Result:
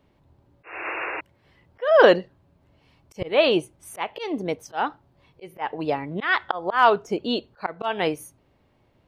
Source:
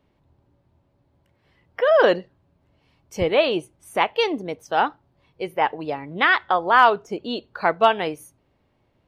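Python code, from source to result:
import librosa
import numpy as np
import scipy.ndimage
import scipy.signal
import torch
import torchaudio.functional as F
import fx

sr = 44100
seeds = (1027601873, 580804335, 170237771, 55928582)

y = fx.spec_paint(x, sr, seeds[0], shape='noise', start_s=0.63, length_s=0.58, low_hz=300.0, high_hz=2800.0, level_db=-33.0)
y = fx.auto_swell(y, sr, attack_ms=239.0)
y = y * 10.0 ** (3.0 / 20.0)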